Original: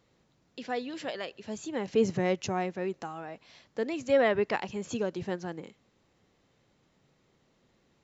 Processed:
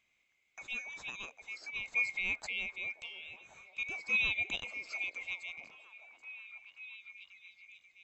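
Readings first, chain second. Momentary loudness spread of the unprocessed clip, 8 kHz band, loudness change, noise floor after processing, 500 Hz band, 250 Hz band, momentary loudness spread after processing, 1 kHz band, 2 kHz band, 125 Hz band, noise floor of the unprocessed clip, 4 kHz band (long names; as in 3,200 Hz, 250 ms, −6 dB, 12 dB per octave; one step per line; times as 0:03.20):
16 LU, can't be measured, −4.5 dB, −76 dBFS, −28.0 dB, −25.5 dB, 21 LU, −18.0 dB, +5.0 dB, −20.5 dB, −70 dBFS, +0.5 dB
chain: neighbouring bands swapped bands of 2,000 Hz
echo through a band-pass that steps 536 ms, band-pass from 430 Hz, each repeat 0.7 octaves, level −6.5 dB
level −7.5 dB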